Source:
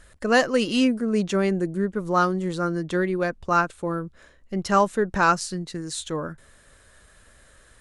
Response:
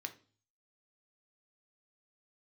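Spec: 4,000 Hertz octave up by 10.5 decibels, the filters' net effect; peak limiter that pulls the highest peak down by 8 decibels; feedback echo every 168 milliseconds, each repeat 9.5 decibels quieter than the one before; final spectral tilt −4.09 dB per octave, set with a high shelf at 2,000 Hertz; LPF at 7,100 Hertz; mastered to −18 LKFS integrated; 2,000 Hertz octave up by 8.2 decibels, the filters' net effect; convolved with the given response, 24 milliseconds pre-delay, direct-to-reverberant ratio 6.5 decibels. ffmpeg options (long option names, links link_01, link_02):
-filter_complex "[0:a]lowpass=7100,highshelf=frequency=2000:gain=3.5,equalizer=frequency=2000:width_type=o:gain=7.5,equalizer=frequency=4000:width_type=o:gain=8,alimiter=limit=-9.5dB:level=0:latency=1,aecho=1:1:168|336|504|672:0.335|0.111|0.0365|0.012,asplit=2[link_01][link_02];[1:a]atrim=start_sample=2205,adelay=24[link_03];[link_02][link_03]afir=irnorm=-1:irlink=0,volume=-5dB[link_04];[link_01][link_04]amix=inputs=2:normalize=0,volume=3.5dB"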